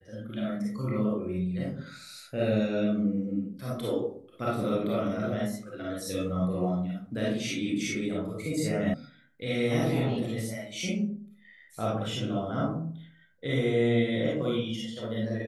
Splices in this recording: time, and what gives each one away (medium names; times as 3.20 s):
8.94 s: sound stops dead